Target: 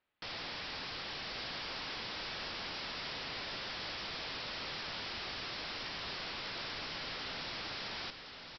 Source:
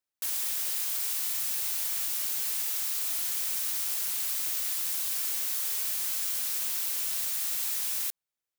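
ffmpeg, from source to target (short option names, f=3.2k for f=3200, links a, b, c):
-af "lowpass=f=3.2k:w=0.5412,lowpass=f=3.2k:w=1.3066,alimiter=level_in=17dB:limit=-24dB:level=0:latency=1:release=32,volume=-17dB,aresample=11025,aeval=exprs='(mod(299*val(0)+1,2)-1)/299':c=same,aresample=44100,aecho=1:1:1066:0.422,volume=12dB"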